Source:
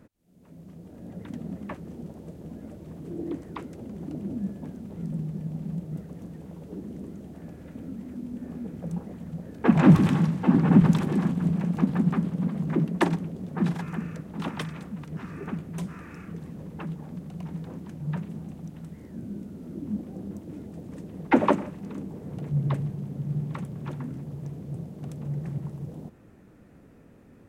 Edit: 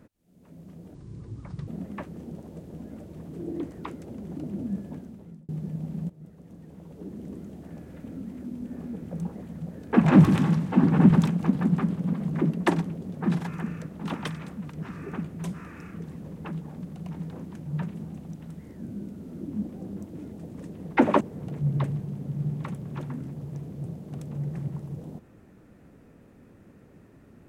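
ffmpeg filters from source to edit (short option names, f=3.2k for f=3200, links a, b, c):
-filter_complex "[0:a]asplit=7[a][b][c][d][e][f][g];[a]atrim=end=0.944[h];[b]atrim=start=0.94:end=1.39,asetpts=PTS-STARTPTS,asetrate=26901,aresample=44100[i];[c]atrim=start=1.386:end=5.2,asetpts=PTS-STARTPTS,afade=t=out:st=3.224:d=0.59[j];[d]atrim=start=5.2:end=5.81,asetpts=PTS-STARTPTS,afade=t=in:d=0.004:c=hsin,afade=t=out:st=0.606:d=0.004:c=hsin:silence=0.177828[k];[e]atrim=start=5.81:end=11.012,asetpts=PTS-STARTPTS,afade=t=in:d=1.25:silence=0.177828[l];[f]atrim=start=11.638:end=21.552[m];[g]atrim=start=22.108[n];[h][i]acrossfade=d=0.004:c1=hsin:c2=hsin[o];[j][k][l]concat=n=3:v=0:a=1[p];[o][p]acrossfade=d=0.004:c1=hsin:c2=hsin[q];[q][m]acrossfade=d=0.004:c1=hsin:c2=hsin[r];[r][n]acrossfade=d=0.004:c1=hsin:c2=hsin"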